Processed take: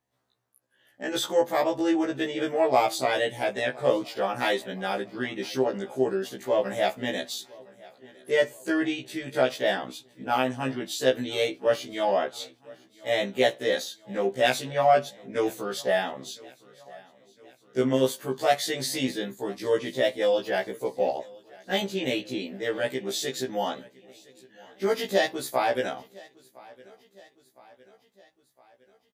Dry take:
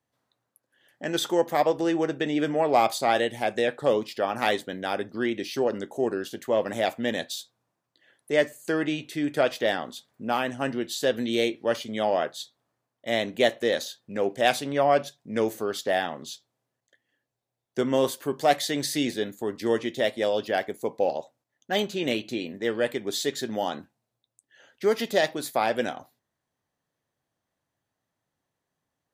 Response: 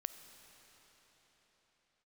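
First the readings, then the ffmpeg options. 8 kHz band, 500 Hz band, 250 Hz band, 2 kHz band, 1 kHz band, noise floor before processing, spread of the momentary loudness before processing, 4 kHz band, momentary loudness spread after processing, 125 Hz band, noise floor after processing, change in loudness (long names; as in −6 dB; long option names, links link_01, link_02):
0.0 dB, 0.0 dB, −1.5 dB, 0.0 dB, −0.5 dB, −84 dBFS, 9 LU, 0.0 dB, 10 LU, 0.0 dB, −66 dBFS, −0.5 dB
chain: -af "aecho=1:1:1010|2020|3030|4040:0.0668|0.0368|0.0202|0.0111,afftfilt=real='re*1.73*eq(mod(b,3),0)':imag='im*1.73*eq(mod(b,3),0)':win_size=2048:overlap=0.75,volume=2dB"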